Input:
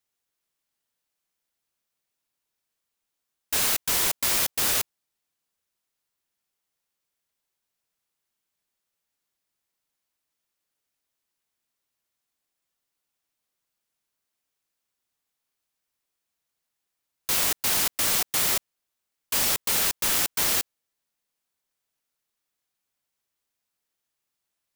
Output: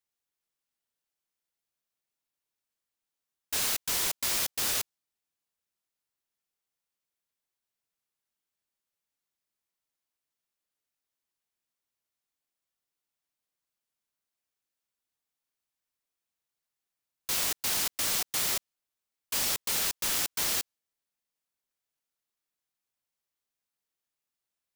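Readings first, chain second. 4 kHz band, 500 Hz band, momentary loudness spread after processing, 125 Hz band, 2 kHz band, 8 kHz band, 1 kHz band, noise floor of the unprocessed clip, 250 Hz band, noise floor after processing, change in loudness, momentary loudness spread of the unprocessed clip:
-4.0 dB, -6.5 dB, 6 LU, -6.5 dB, -5.5 dB, -4.5 dB, -6.5 dB, -83 dBFS, -6.5 dB, under -85 dBFS, -5.5 dB, 6 LU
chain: dynamic bell 5.1 kHz, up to +3 dB, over -40 dBFS, Q 0.71; trim -6.5 dB

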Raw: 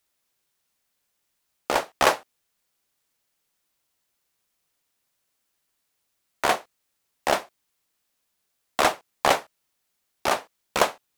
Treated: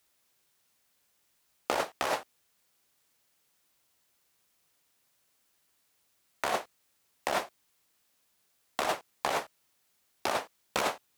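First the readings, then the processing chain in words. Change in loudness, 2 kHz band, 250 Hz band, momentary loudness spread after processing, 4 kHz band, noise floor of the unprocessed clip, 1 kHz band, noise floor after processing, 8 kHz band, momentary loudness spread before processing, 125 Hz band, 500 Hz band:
-8.5 dB, -8.0 dB, -7.5 dB, 9 LU, -8.0 dB, -76 dBFS, -8.0 dB, -73 dBFS, -8.0 dB, 9 LU, -8.5 dB, -8.0 dB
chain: high-pass 42 Hz; peak limiter -13 dBFS, peak gain reduction 11 dB; compressor with a negative ratio -29 dBFS, ratio -1

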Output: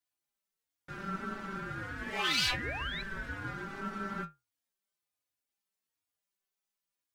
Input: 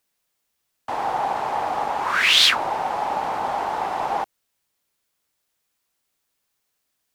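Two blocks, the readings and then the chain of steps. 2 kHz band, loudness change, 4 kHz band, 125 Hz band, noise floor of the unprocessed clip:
-11.5 dB, -14.0 dB, -15.5 dB, +3.0 dB, -76 dBFS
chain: inharmonic resonator 190 Hz, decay 0.21 s, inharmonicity 0.002; painted sound rise, 2.18–3.02 s, 350–3300 Hz -36 dBFS; ring modulator with a swept carrier 710 Hz, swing 20%, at 0.38 Hz; trim -1 dB

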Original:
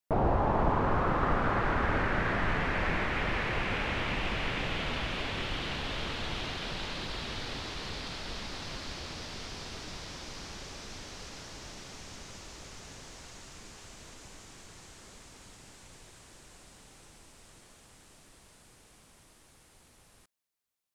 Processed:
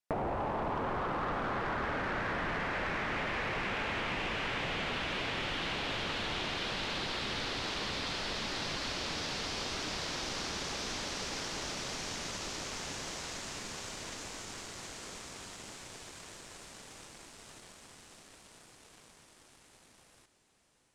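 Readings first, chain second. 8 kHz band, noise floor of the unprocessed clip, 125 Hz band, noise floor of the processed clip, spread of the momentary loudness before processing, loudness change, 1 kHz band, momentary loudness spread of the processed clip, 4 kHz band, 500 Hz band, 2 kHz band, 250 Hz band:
+5.5 dB, -61 dBFS, -7.5 dB, -62 dBFS, 21 LU, -3.0 dB, -3.0 dB, 15 LU, +2.5 dB, -3.0 dB, -1.0 dB, -4.0 dB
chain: bass shelf 120 Hz -10.5 dB; on a send: echo that smears into a reverb 645 ms, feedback 69%, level -11 dB; on the sum: waveshaping leveller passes 2; low-pass 9.7 kHz 12 dB/octave; compression 6:1, threshold -35 dBFS, peak gain reduction 13 dB; trim +1.5 dB

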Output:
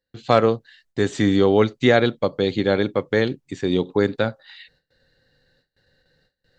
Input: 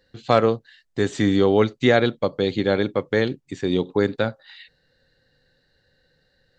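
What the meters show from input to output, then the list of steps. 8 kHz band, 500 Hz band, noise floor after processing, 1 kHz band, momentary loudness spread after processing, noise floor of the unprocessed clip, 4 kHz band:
no reading, +1.0 dB, -82 dBFS, +1.0 dB, 9 LU, -67 dBFS, +1.0 dB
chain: gate with hold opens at -54 dBFS; trim +1 dB

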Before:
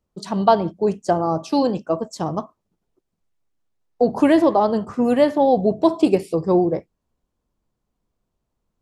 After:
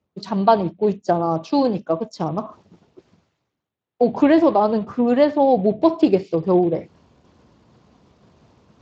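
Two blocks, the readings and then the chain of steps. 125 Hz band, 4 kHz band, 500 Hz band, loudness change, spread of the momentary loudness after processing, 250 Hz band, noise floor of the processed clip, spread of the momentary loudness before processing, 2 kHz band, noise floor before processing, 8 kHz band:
+0.5 dB, -1.0 dB, +0.5 dB, +0.5 dB, 11 LU, +0.5 dB, -80 dBFS, 10 LU, -0.5 dB, -78 dBFS, no reading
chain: reverse; upward compressor, threshold -28 dBFS; reverse; Speex 21 kbps 16 kHz

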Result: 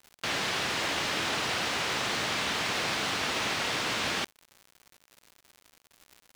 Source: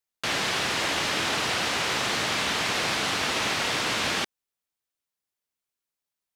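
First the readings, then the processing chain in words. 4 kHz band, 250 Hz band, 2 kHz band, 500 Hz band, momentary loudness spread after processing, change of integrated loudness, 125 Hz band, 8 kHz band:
-4.0 dB, -3.5 dB, -3.5 dB, -3.5 dB, 2 LU, -3.5 dB, -3.5 dB, -4.5 dB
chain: median filter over 3 samples; crackle 150 per s -36 dBFS; trim -3.5 dB

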